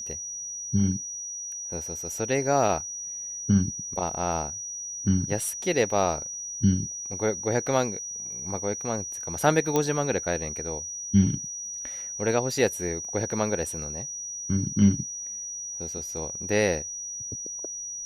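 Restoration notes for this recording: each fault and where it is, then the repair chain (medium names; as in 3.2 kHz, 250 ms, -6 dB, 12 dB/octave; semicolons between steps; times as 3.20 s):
whine 5.8 kHz -33 dBFS
9.76 s: pop -10 dBFS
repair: de-click; band-stop 5.8 kHz, Q 30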